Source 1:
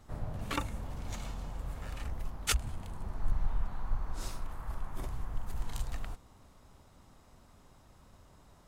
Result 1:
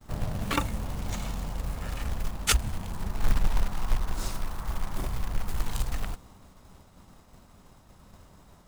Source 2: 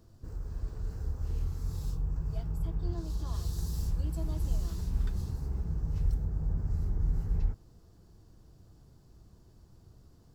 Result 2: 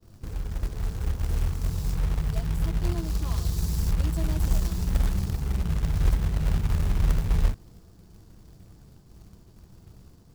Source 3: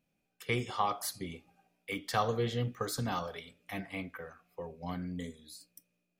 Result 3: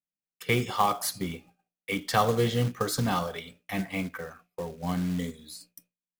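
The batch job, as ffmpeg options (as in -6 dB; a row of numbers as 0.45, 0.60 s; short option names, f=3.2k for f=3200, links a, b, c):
-af "agate=range=-33dB:threshold=-55dB:ratio=3:detection=peak,equalizer=f=190:t=o:w=0.36:g=5,acrusher=bits=4:mode=log:mix=0:aa=0.000001,volume=6.5dB"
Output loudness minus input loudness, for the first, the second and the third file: +7.0, +7.0, +7.0 LU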